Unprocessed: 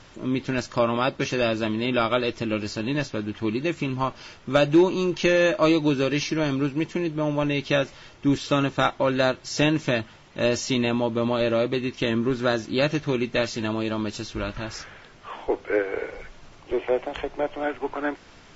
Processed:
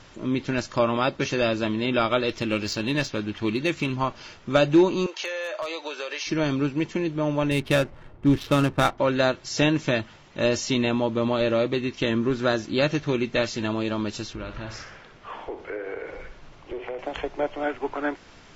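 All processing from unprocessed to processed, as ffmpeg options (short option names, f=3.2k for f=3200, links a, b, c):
-filter_complex "[0:a]asettb=1/sr,asplit=3[a][b][c];[a]atrim=end=2.294[d];[b]atrim=start=2.29:end=3.96,asetpts=PTS-STARTPTS,afade=t=in:d=0.004:c=qsin,afade=t=out:st=1.666:d=0.004:c=qsin,highshelf=f=3.1k:g=11,adynamicsmooth=sensitivity=2:basefreq=5.1k[e];[c]atrim=start=3.956[f];[d][e]acrossfade=d=0.004:c1=hsin:c2=qsin[g];[g][f]acrossfade=d=0.004:c1=qsin:c2=hsin,asettb=1/sr,asplit=3[h][i][j];[h]atrim=end=5.064[k];[i]atrim=start=5.06:end=6.27,asetpts=PTS-STARTPTS,afade=t=in:d=0.004:c=qsin,afade=t=out:st=1.206:d=0.004:c=qsin,highpass=f=530:w=0.5412,highpass=f=530:w=1.3066,aeval=exprs='0.211*(abs(mod(val(0)/0.211+3,4)-2)-1)':c=same,acompressor=threshold=-27dB:ratio=6:attack=3.2:release=140:knee=1:detection=peak[l];[j]atrim=start=6.266[m];[k][l]acrossfade=d=0.004:c1=hsin:c2=qsin[n];[n][m]acrossfade=d=0.004:c1=qsin:c2=hsin,asettb=1/sr,asplit=3[o][p][q];[o]atrim=end=7.514[r];[p]atrim=start=7.51:end=8.98,asetpts=PTS-STARTPTS,afade=t=in:d=0.004:c=qsin,afade=t=out:st=1.466:d=0.004:c=qsin,lowshelf=f=140:g=8,adynamicsmooth=sensitivity=7.5:basefreq=840[s];[q]atrim=start=8.976[t];[r][s]acrossfade=d=0.004:c1=hsin:c2=qsin[u];[u][t]acrossfade=d=0.004:c1=qsin:c2=hsin,asettb=1/sr,asplit=3[v][w][x];[v]atrim=end=14.334[y];[w]atrim=start=14.33:end=16.99,asetpts=PTS-STARTPTS,afade=t=in:d=0.004:c=qsin,afade=t=out:st=2.656:d=0.004:c=qsin,highshelf=f=6.4k:g=-11,acompressor=threshold=-30dB:ratio=5:attack=3.2:release=140:knee=1:detection=peak,aecho=1:1:62|124|186|248|310:0.316|0.139|0.0612|0.0269|0.0119,atrim=end_sample=117306[z];[x]atrim=start=16.986[aa];[y][z]acrossfade=d=0.004:c1=hsin:c2=qsin[ab];[ab][aa]acrossfade=d=0.004:c1=qsin:c2=hsin"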